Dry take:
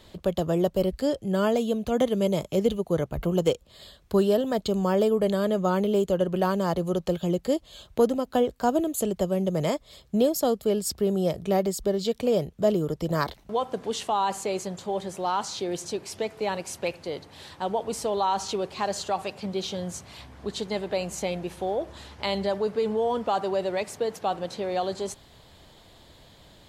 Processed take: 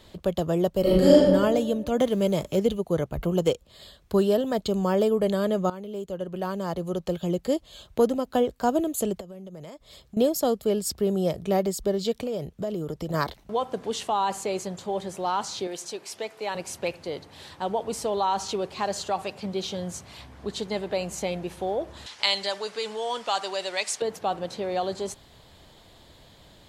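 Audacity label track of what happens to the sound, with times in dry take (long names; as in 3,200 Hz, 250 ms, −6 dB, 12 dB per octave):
0.810000	1.240000	thrown reverb, RT60 1.4 s, DRR −10 dB
1.990000	2.600000	mu-law and A-law mismatch coded by mu
5.700000	7.540000	fade in, from −15.5 dB
9.200000	10.170000	downward compressor 10 to 1, threshold −38 dBFS
12.230000	13.140000	downward compressor 4 to 1, threshold −27 dBFS
15.670000	16.550000	high-pass filter 600 Hz 6 dB per octave
22.060000	24.020000	meter weighting curve ITU-R 468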